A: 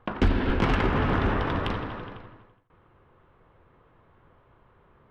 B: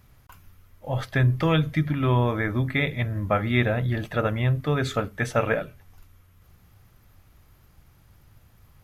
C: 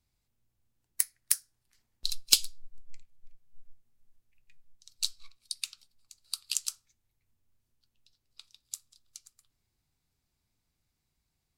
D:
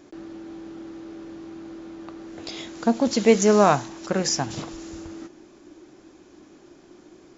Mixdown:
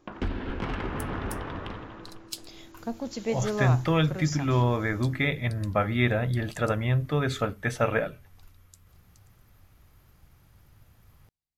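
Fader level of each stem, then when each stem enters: -8.5 dB, -2.0 dB, -16.0 dB, -13.0 dB; 0.00 s, 2.45 s, 0.00 s, 0.00 s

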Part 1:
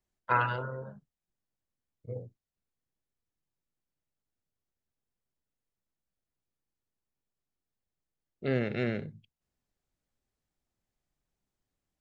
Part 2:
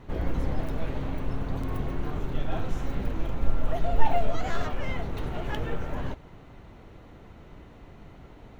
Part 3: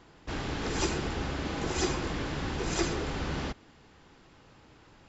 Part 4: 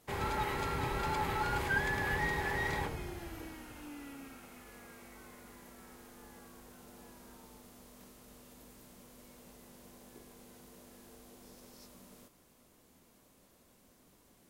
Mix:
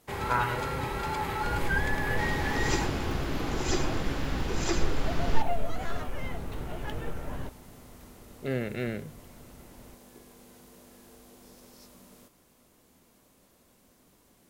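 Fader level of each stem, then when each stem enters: -1.5 dB, -4.5 dB, -0.5 dB, +2.5 dB; 0.00 s, 1.35 s, 1.90 s, 0.00 s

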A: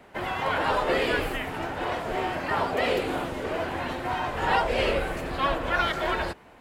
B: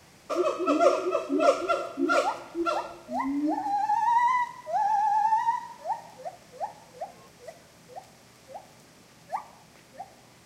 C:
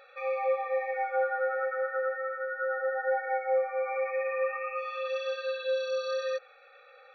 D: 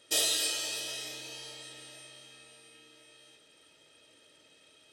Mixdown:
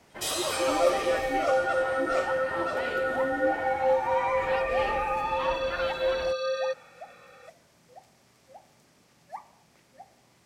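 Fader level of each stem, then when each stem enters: -9.5 dB, -7.5 dB, +2.5 dB, -4.0 dB; 0.00 s, 0.00 s, 0.35 s, 0.10 s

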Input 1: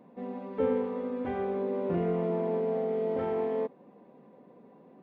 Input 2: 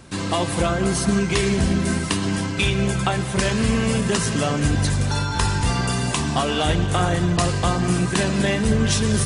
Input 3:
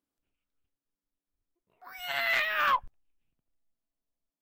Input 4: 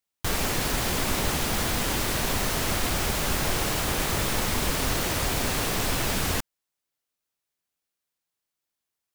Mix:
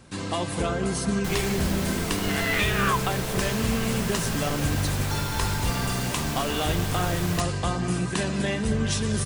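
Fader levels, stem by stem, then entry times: -7.0 dB, -6.0 dB, +0.5 dB, -6.5 dB; 0.00 s, 0.00 s, 0.20 s, 1.00 s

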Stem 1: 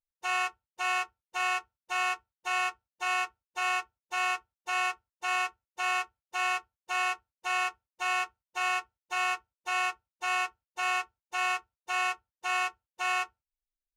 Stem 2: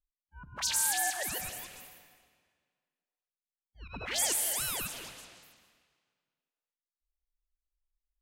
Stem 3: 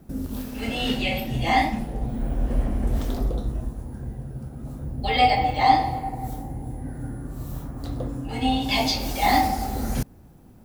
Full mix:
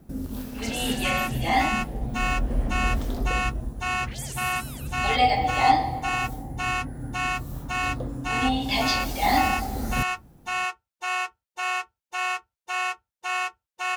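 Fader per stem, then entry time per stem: +2.0 dB, -8.0 dB, -2.0 dB; 0.80 s, 0.00 s, 0.00 s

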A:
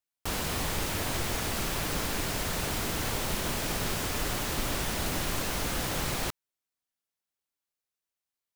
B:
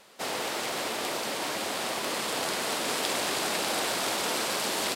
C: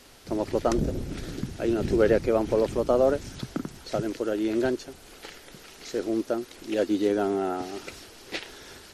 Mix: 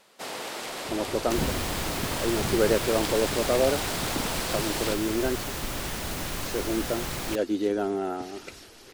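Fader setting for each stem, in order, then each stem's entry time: -1.5 dB, -3.5 dB, -2.0 dB; 1.05 s, 0.00 s, 0.60 s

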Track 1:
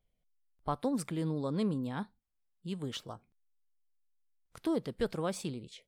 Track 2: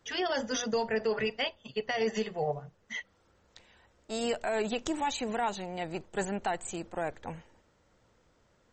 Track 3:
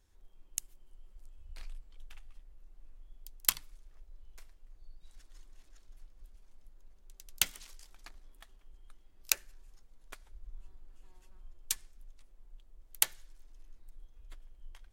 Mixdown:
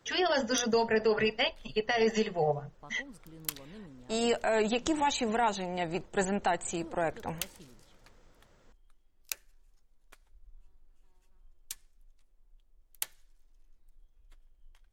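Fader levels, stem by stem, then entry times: -17.0 dB, +3.0 dB, -8.0 dB; 2.15 s, 0.00 s, 0.00 s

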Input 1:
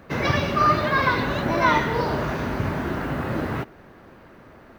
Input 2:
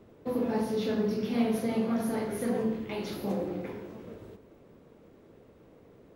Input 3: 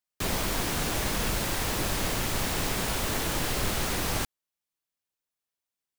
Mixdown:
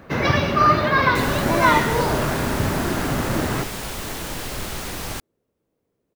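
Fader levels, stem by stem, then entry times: +3.0 dB, -19.5 dB, -1.0 dB; 0.00 s, 0.00 s, 0.95 s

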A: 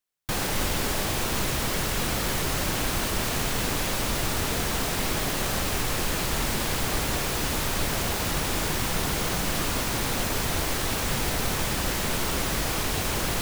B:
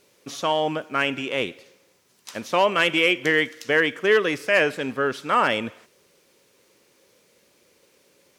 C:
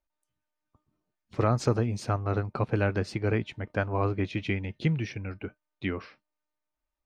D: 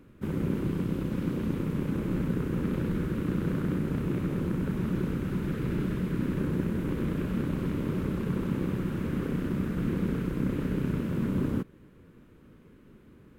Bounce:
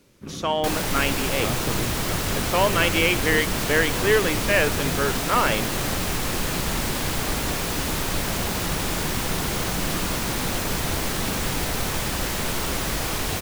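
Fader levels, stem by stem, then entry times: +1.0 dB, -1.5 dB, -6.0 dB, -6.5 dB; 0.35 s, 0.00 s, 0.00 s, 0.00 s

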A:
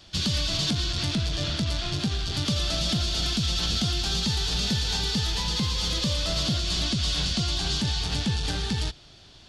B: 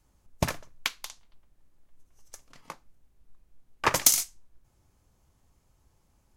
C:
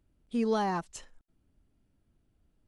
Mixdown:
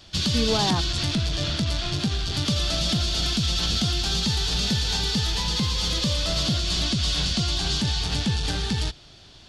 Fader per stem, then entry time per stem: +2.0 dB, mute, +3.0 dB; 0.00 s, mute, 0.00 s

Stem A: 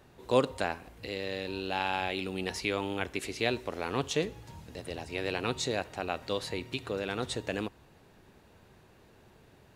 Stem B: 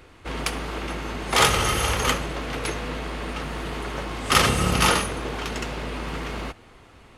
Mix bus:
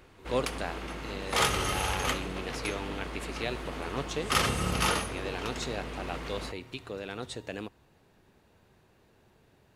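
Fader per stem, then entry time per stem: -4.5 dB, -8.0 dB; 0.00 s, 0.00 s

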